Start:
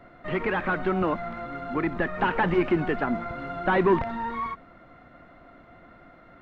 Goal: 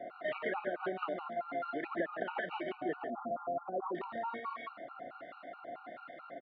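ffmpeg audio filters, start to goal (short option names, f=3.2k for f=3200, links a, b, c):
-filter_complex "[0:a]asettb=1/sr,asplit=3[a][b][c];[a]atrim=end=2.964[d];[b]atrim=start=2.96:end=3.95,asetpts=PTS-STARTPTS,afade=t=in:d=0.004:c=qsin,afade=t=out:st=0.986:d=0.004:c=qsin,asuperstop=centerf=3000:order=20:qfactor=0.56[e];[c]atrim=start=3.946[f];[d][e]acrossfade=d=0.004:c1=hsin:c2=qsin[g];[g][f]acrossfade=d=0.004:c1=qsin:c2=hsin,asplit=2[h][i];[i]aecho=0:1:140:0.501[j];[h][j]amix=inputs=2:normalize=0,acrossover=split=1300[k][l];[k]aeval=exprs='val(0)*(1-0.5/2+0.5/2*cos(2*PI*1.4*n/s))':c=same[m];[l]aeval=exprs='val(0)*(1-0.5/2-0.5/2*cos(2*PI*1.4*n/s))':c=same[n];[m][n]amix=inputs=2:normalize=0,highpass=430,equalizer=f=430:t=q:w=4:g=-4,equalizer=f=640:t=q:w=4:g=4,equalizer=f=1k:t=q:w=4:g=-8,equalizer=f=1.6k:t=q:w=4:g=-5,equalizer=f=2.3k:t=q:w=4:g=-6,lowpass=f=3.8k:w=0.5412,lowpass=f=3.8k:w=1.3066,acompressor=threshold=-43dB:ratio=6,afftfilt=real='re*gt(sin(2*PI*4.6*pts/sr)*(1-2*mod(floor(b*sr/1024/750),2)),0)':imag='im*gt(sin(2*PI*4.6*pts/sr)*(1-2*mod(floor(b*sr/1024/750),2)),0)':win_size=1024:overlap=0.75,volume=10.5dB"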